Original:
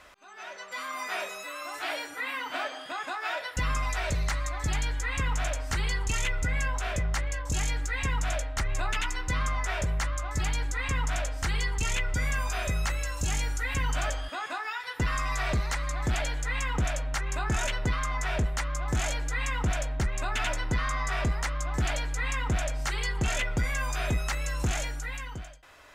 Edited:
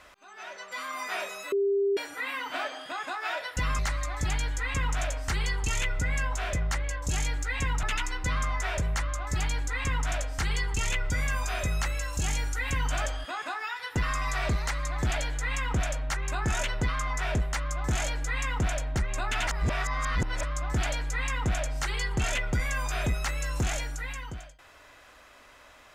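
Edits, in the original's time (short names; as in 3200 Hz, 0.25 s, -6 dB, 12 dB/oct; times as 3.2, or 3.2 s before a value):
1.52–1.97 bleep 398 Hz -22 dBFS
3.79–4.22 cut
8.26–8.87 cut
20.51–21.47 reverse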